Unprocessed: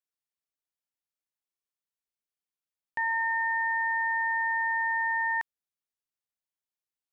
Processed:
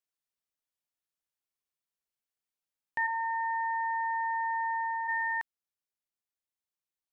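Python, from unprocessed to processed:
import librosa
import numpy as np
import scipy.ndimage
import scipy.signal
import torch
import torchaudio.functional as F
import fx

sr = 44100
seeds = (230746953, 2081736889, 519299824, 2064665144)

y = fx.lowpass(x, sr, hz=1400.0, slope=24, at=(3.06, 5.07), fade=0.02)
y = fx.rider(y, sr, range_db=10, speed_s=0.5)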